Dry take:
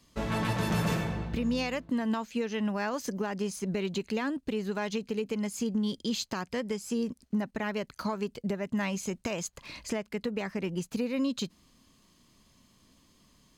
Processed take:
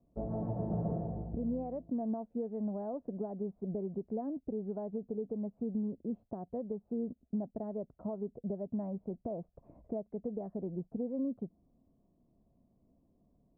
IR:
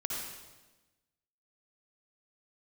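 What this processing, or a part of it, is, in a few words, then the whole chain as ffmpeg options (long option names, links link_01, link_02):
under water: -af "lowpass=frequency=650:width=0.5412,lowpass=frequency=650:width=1.3066,equalizer=frequency=700:width_type=o:width=0.28:gain=10,volume=-5.5dB"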